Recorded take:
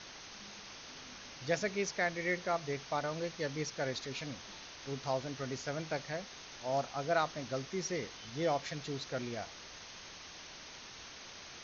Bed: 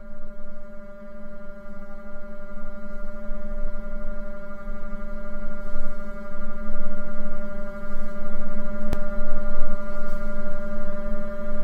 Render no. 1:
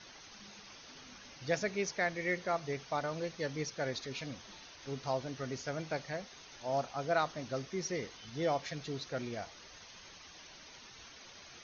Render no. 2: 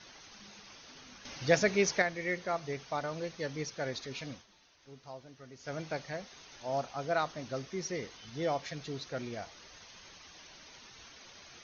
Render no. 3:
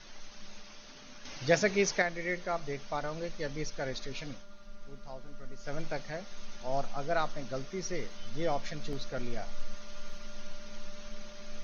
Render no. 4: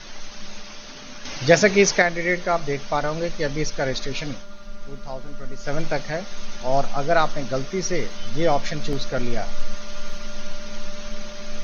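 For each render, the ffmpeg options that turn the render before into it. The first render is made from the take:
ffmpeg -i in.wav -af "afftdn=noise_reduction=8:noise_floor=-51" out.wav
ffmpeg -i in.wav -filter_complex "[0:a]asettb=1/sr,asplit=3[link_01][link_02][link_03];[link_01]atrim=end=1.254[link_04];[link_02]atrim=start=1.25:end=2.02,asetpts=PTS-STARTPTS,afade=type=in:duration=0.004:curve=qsin,afade=type=out:start_time=0.766:duration=0.004:curve=qsin,acontrast=88[link_05];[link_03]atrim=start=2.016[link_06];[link_04][link_05]acrossfade=duration=0.004:curve1=hsin:curve2=qsin[link_07];[link_07][link_06]acrossfade=duration=0.004:curve1=qsin:curve2=hsin,asplit=3[link_08][link_09][link_10];[link_08]atrim=end=4.46,asetpts=PTS-STARTPTS,afade=type=out:start_time=4.32:duration=0.14:silence=0.251189[link_11];[link_09]atrim=start=4.46:end=5.59,asetpts=PTS-STARTPTS,volume=-12dB[link_12];[link_10]atrim=start=5.59,asetpts=PTS-STARTPTS,afade=type=in:duration=0.14:silence=0.251189[link_13];[link_11][link_12][link_13]concat=n=3:v=0:a=1" out.wav
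ffmpeg -i in.wav -i bed.wav -filter_complex "[1:a]volume=-18dB[link_01];[0:a][link_01]amix=inputs=2:normalize=0" out.wav
ffmpeg -i in.wav -af "volume=12dB,alimiter=limit=-3dB:level=0:latency=1" out.wav

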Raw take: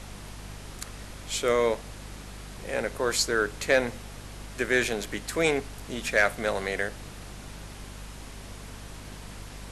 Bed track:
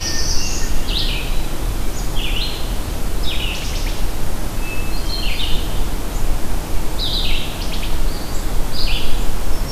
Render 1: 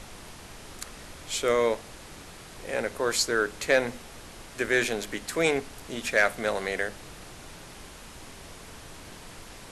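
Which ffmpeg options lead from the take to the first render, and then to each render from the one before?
ffmpeg -i in.wav -af "bandreject=frequency=50:width_type=h:width=6,bandreject=frequency=100:width_type=h:width=6,bandreject=frequency=150:width_type=h:width=6,bandreject=frequency=200:width_type=h:width=6,bandreject=frequency=250:width_type=h:width=6" out.wav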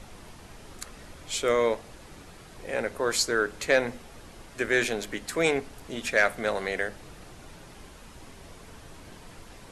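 ffmpeg -i in.wav -af "afftdn=noise_reduction=6:noise_floor=-46" out.wav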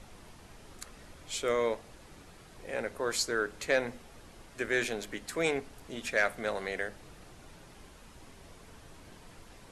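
ffmpeg -i in.wav -af "volume=-5.5dB" out.wav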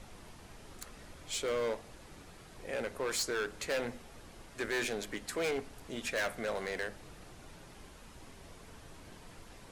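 ffmpeg -i in.wav -af "volume=29.5dB,asoftclip=hard,volume=-29.5dB" out.wav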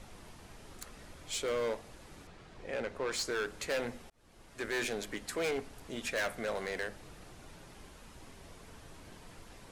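ffmpeg -i in.wav -filter_complex "[0:a]asettb=1/sr,asplit=3[link_01][link_02][link_03];[link_01]atrim=end=2.274[link_04];[link_02]atrim=start=2.27:end=3.25,asetpts=PTS-STARTPTS,afade=type=in:duration=0.004:curve=qsin,afade=type=out:start_time=0.976:duration=0.004:curve=qsin,adynamicsmooth=sensitivity=6.5:basefreq=5900[link_05];[link_03]atrim=start=3.246[link_06];[link_04][link_05]acrossfade=duration=0.004:curve1=hsin:curve2=qsin[link_07];[link_07][link_06]acrossfade=duration=0.004:curve1=qsin:curve2=hsin,asplit=2[link_08][link_09];[link_08]atrim=end=4.1,asetpts=PTS-STARTPTS,afade=type=out:start_time=4.096:duration=0.004:curve=hsin[link_10];[link_09]atrim=start=4.1,asetpts=PTS-STARTPTS,afade=type=in:duration=0.86:curve=qsin[link_11];[link_10][link_11]concat=n=2:v=0:a=1" out.wav

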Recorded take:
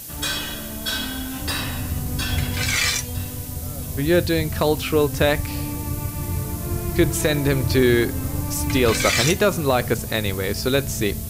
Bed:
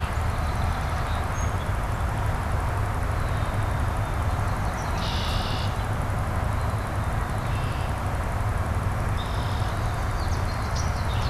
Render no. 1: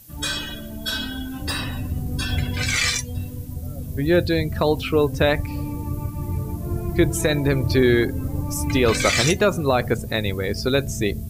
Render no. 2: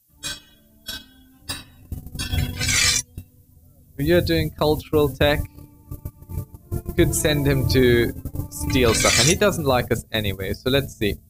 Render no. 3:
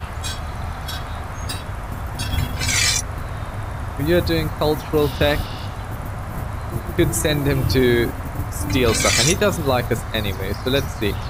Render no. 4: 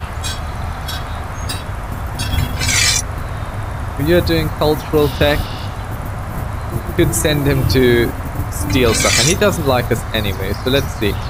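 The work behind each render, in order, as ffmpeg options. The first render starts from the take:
ffmpeg -i in.wav -af "afftdn=noise_reduction=14:noise_floor=-32" out.wav
ffmpeg -i in.wav -af "agate=range=-22dB:threshold=-23dB:ratio=16:detection=peak,bass=frequency=250:gain=1,treble=frequency=4000:gain=7" out.wav
ffmpeg -i in.wav -i bed.wav -filter_complex "[1:a]volume=-2.5dB[link_01];[0:a][link_01]amix=inputs=2:normalize=0" out.wav
ffmpeg -i in.wav -af "volume=4.5dB,alimiter=limit=-2dB:level=0:latency=1" out.wav

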